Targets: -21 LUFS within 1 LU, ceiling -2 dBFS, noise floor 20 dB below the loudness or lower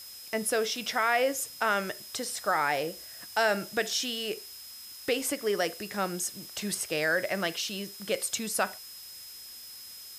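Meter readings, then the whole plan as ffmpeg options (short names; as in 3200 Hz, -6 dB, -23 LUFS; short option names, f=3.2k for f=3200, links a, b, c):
steady tone 5100 Hz; tone level -46 dBFS; noise floor -46 dBFS; noise floor target -50 dBFS; loudness -30.0 LUFS; peak -14.5 dBFS; loudness target -21.0 LUFS
-> -af "bandreject=f=5.1k:w=30"
-af "afftdn=nr=6:nf=-46"
-af "volume=9dB"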